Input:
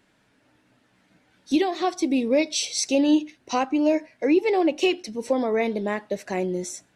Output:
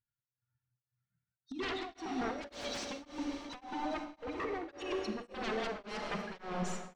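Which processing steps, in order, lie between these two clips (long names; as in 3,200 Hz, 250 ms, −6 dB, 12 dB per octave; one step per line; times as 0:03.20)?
spectral dynamics exaggerated over time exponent 2
parametric band 64 Hz −7.5 dB 1.6 octaves
hum removal 95.34 Hz, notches 9
compressor whose output falls as the input rises −31 dBFS, ratio −0.5
wave folding −34 dBFS
high-frequency loss of the air 130 metres
feedback echo with a high-pass in the loop 399 ms, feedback 65%, level −14 dB
on a send at −3 dB: convolution reverb RT60 3.7 s, pre-delay 34 ms
on the sum: tremolo along a rectified sine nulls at 1.8 Hz
level +3 dB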